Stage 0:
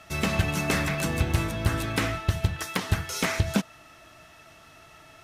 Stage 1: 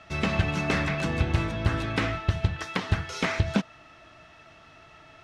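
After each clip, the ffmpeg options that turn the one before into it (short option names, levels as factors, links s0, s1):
-af "lowpass=4300"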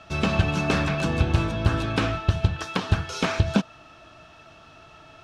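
-af "equalizer=f=2000:w=6.6:g=-13,volume=1.5"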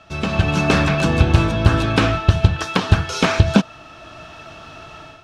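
-af "dynaudnorm=f=280:g=3:m=3.55"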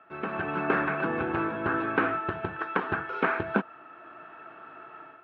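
-af "highpass=330,equalizer=f=370:t=q:w=4:g=4,equalizer=f=610:t=q:w=4:g=-6,equalizer=f=1500:t=q:w=4:g=5,lowpass=f=2000:w=0.5412,lowpass=f=2000:w=1.3066,volume=0.473"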